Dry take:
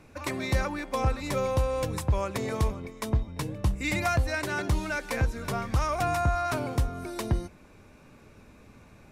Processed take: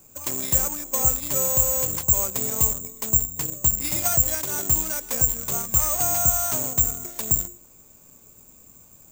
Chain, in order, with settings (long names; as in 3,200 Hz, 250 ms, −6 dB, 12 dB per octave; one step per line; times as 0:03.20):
parametric band 1,900 Hz −9 dB 0.81 octaves
mains-hum notches 50/100/150/200/250/300/350/400/450 Hz
in parallel at −9.5 dB: bit reduction 5 bits
on the sum: bad sample-rate conversion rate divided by 6×, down none, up zero stuff
level −4.5 dB